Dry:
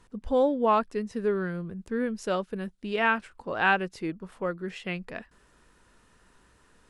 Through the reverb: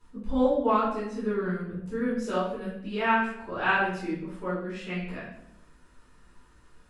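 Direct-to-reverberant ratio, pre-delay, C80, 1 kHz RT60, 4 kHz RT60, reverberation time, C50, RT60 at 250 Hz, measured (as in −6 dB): −11.0 dB, 3 ms, 6.0 dB, 0.70 s, 0.50 s, 0.80 s, 2.0 dB, 1.0 s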